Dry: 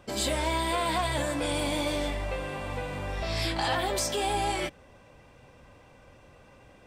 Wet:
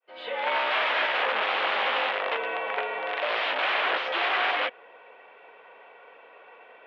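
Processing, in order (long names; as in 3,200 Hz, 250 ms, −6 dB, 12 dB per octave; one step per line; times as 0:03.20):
fade in at the beginning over 0.78 s
wrap-around overflow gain 25 dB
single-sideband voice off tune −67 Hz 580–3,200 Hz
level +8.5 dB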